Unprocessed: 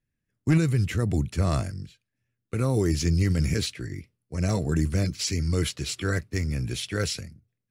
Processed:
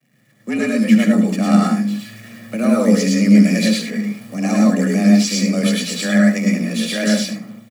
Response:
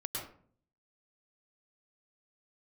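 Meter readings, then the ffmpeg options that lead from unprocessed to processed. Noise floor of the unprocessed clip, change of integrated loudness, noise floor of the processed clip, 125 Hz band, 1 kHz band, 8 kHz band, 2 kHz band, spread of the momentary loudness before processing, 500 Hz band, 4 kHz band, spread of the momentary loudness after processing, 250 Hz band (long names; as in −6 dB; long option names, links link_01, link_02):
−82 dBFS, +10.5 dB, −56 dBFS, +1.5 dB, +11.5 dB, +8.5 dB, +11.5 dB, 12 LU, +10.0 dB, +9.0 dB, 12 LU, +16.0 dB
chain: -filter_complex "[0:a]aeval=exprs='val(0)+0.5*0.00944*sgn(val(0))':channel_layout=same,equalizer=frequency=2000:width_type=o:width=0.59:gain=5.5,aecho=1:1:1.8:0.58,dynaudnorm=framelen=390:gausssize=3:maxgain=9.5dB,agate=range=-33dB:threshold=-36dB:ratio=3:detection=peak,aecho=1:1:73:0.316[link_01];[1:a]atrim=start_sample=2205,atrim=end_sample=6174[link_02];[link_01][link_02]afir=irnorm=-1:irlink=0,afreqshift=110,volume=-3dB"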